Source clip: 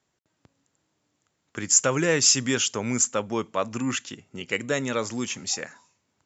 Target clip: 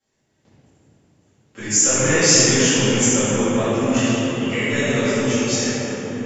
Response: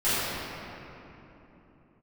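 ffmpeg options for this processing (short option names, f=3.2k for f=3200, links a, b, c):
-filter_complex "[0:a]equalizer=f=1.2k:t=o:w=0.73:g=-7.5,acrossover=split=860[a][b];[a]asoftclip=type=tanh:threshold=-25.5dB[c];[c][b]amix=inputs=2:normalize=0[d];[1:a]atrim=start_sample=2205,asetrate=27342,aresample=44100[e];[d][e]afir=irnorm=-1:irlink=0,volume=-8.5dB"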